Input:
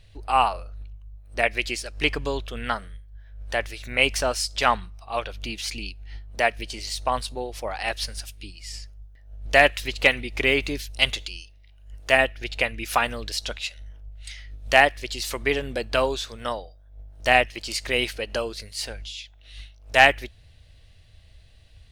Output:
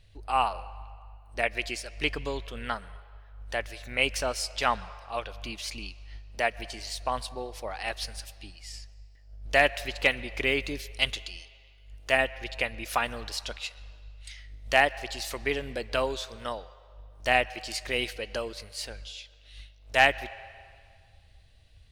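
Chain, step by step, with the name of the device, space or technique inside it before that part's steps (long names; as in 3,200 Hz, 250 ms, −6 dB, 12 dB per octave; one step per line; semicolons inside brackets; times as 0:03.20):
filtered reverb send (on a send: high-pass filter 440 Hz 24 dB per octave + low-pass filter 5,400 Hz 12 dB per octave + convolution reverb RT60 2.1 s, pre-delay 116 ms, DRR 18 dB)
on the sum: level −5.5 dB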